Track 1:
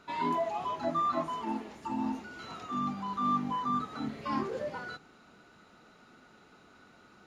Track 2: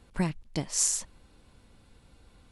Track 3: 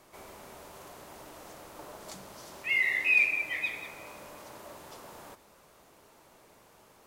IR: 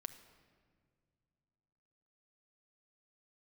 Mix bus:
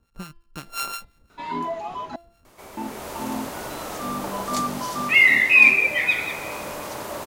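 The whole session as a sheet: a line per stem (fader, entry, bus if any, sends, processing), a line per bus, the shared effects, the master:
-4.5 dB, 1.30 s, muted 2.16–2.77 s, no send, none
-6.5 dB, 0.00 s, no send, sorted samples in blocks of 32 samples; harmonic tremolo 5.7 Hz, depth 70%, crossover 1.1 kHz
-2.5 dB, 2.45 s, no send, level rider gain up to 10.5 dB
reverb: none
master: de-hum 340.3 Hz, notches 15; level rider gain up to 7 dB

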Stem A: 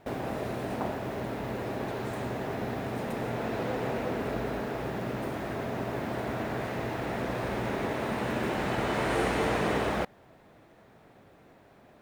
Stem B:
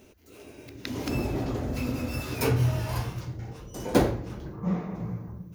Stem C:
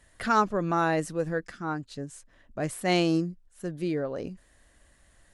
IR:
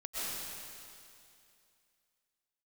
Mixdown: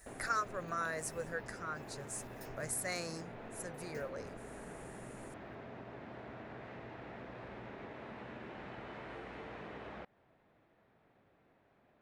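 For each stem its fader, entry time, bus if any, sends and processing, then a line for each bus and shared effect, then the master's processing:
-14.0 dB, 0.00 s, no send, low-pass 2.5 kHz 12 dB/octave; compression, threshold -31 dBFS, peak gain reduction 8 dB
-18.5 dB, 0.00 s, no send, stepped phaser 11 Hz 300–5300 Hz; auto duck -11 dB, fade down 1.70 s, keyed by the third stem
-0.5 dB, 0.00 s, no send, peaking EQ 320 Hz -13.5 dB 1 oct; compression 1.5:1, threshold -47 dBFS, peak gain reduction 10 dB; static phaser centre 840 Hz, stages 6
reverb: none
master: treble shelf 2.5 kHz +9 dB

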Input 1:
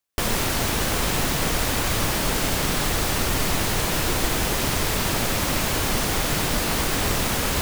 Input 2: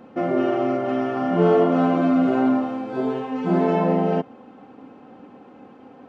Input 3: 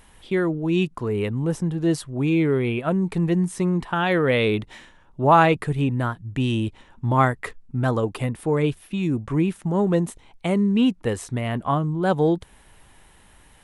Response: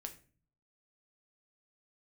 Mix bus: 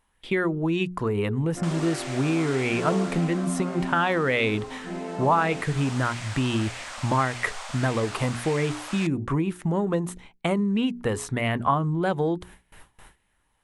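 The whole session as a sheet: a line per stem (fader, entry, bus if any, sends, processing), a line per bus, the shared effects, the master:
2.93 s -13 dB -> 3.57 s -23.5 dB -> 5.20 s -23.5 dB -> 5.85 s -12.5 dB, 1.45 s, no send, elliptic band-pass 610–8600 Hz, stop band 40 dB
-14.5 dB, 1.40 s, no send, none
+2.5 dB, 0.00 s, no send, gate with hold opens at -40 dBFS; hum notches 60/120/180/240/300/360/420 Hz; compression 6:1, threshold -24 dBFS, peak gain reduction 13.5 dB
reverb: none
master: sweeping bell 1.7 Hz 990–2300 Hz +6 dB

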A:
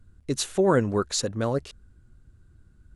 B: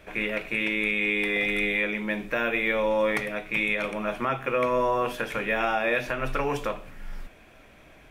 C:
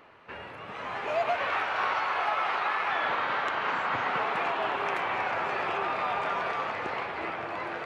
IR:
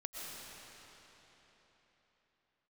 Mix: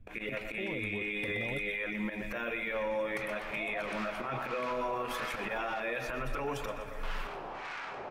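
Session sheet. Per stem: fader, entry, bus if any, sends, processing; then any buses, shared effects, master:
0.0 dB, 0.00 s, bus A, no send, no echo send, steep low-pass 940 Hz 36 dB/octave; peak limiter -20 dBFS, peak gain reduction 9.5 dB
+2.0 dB, 0.00 s, bus A, send -17 dB, echo send -17.5 dB, gate -47 dBFS, range -31 dB; reverb removal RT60 0.9 s
-6.0 dB, 2.45 s, muted 5.80–7.03 s, no bus, send -5 dB, no echo send, saturation -28 dBFS, distortion -12 dB; harmonic tremolo 1.6 Hz, depth 100%, crossover 1 kHz
bus A: 0.0 dB, slow attack 145 ms; compression 2.5:1, threshold -33 dBFS, peak gain reduction 9 dB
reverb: on, RT60 4.0 s, pre-delay 80 ms
echo: feedback delay 124 ms, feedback 55%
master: peak limiter -26 dBFS, peak gain reduction 8 dB

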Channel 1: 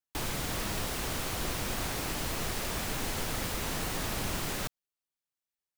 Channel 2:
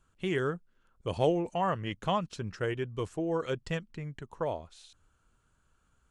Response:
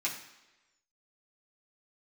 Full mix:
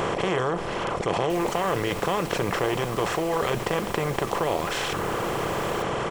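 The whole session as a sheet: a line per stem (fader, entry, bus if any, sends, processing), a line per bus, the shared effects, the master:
-8.0 dB, 1.15 s, send -9.5 dB, none
-4.0 dB, 0.00 s, send -13.5 dB, spectral levelling over time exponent 0.2; reverb removal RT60 1.8 s; level flattener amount 70%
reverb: on, RT60 1.1 s, pre-delay 3 ms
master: none

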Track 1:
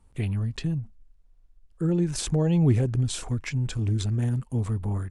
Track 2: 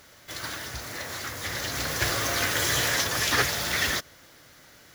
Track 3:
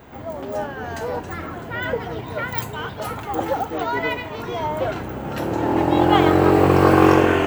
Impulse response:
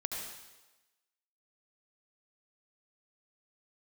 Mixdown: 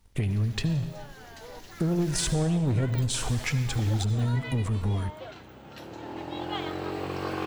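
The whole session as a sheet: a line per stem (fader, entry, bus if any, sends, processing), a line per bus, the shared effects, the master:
-2.0 dB, 0.00 s, send -7.5 dB, waveshaping leveller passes 2; compression 4:1, threshold -26 dBFS, peak gain reduction 10 dB
-19.5 dB, 0.00 s, muted 2.34–3.20 s, no send, Chebyshev high-pass 2.6 kHz
-19.0 dB, 0.40 s, no send, peaking EQ 4.1 kHz +11.5 dB 1.6 oct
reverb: on, RT60 1.1 s, pre-delay 66 ms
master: none

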